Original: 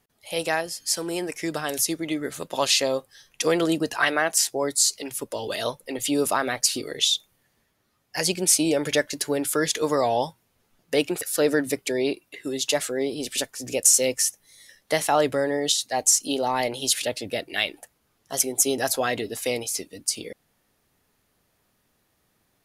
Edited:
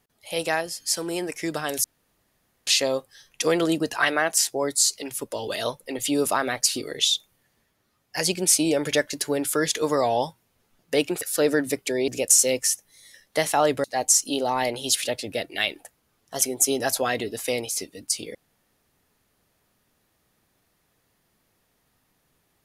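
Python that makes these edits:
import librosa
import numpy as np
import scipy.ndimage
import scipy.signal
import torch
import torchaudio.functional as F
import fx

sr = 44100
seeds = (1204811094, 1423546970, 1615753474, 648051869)

y = fx.edit(x, sr, fx.room_tone_fill(start_s=1.84, length_s=0.83),
    fx.cut(start_s=12.08, length_s=1.55),
    fx.cut(start_s=15.39, length_s=0.43), tone=tone)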